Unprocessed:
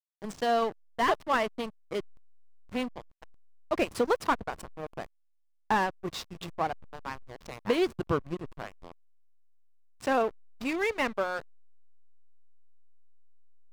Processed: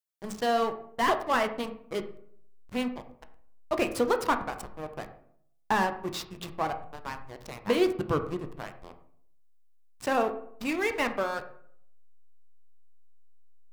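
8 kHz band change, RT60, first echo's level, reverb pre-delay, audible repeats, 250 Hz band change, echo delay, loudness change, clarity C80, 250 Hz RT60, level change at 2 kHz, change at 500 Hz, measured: +3.5 dB, 0.65 s, none, 11 ms, none, +2.0 dB, none, +1.0 dB, 14.5 dB, 0.75 s, +1.0 dB, +1.0 dB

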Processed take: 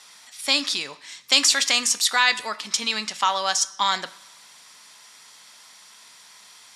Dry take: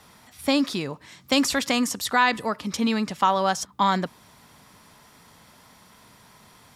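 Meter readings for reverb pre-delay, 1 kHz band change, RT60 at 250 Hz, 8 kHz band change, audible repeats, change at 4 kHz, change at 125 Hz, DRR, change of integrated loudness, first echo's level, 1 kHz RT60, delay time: 13 ms, -2.0 dB, 0.85 s, +9.5 dB, none, +8.5 dB, under -15 dB, 11.5 dB, +3.0 dB, none, 1.0 s, none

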